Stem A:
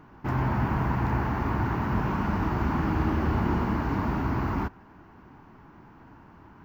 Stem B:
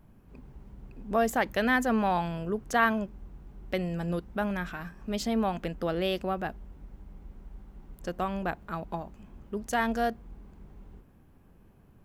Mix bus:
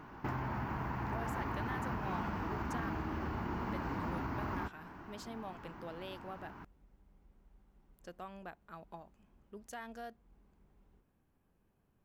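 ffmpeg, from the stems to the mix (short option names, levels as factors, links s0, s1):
-filter_complex "[0:a]acompressor=threshold=0.0178:ratio=6,volume=1.33[s0];[1:a]alimiter=limit=0.0841:level=0:latency=1:release=312,volume=0.224[s1];[s0][s1]amix=inputs=2:normalize=0,lowshelf=f=350:g=-5.5"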